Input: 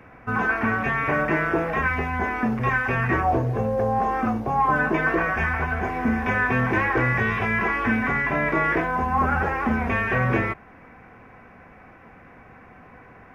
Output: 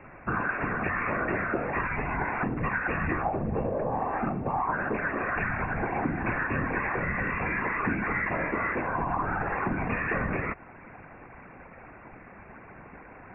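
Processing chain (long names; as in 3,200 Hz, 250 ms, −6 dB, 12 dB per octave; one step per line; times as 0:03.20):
downward compressor, threshold −26 dBFS, peak gain reduction 9 dB
random phases in short frames
linear-phase brick-wall low-pass 2,800 Hz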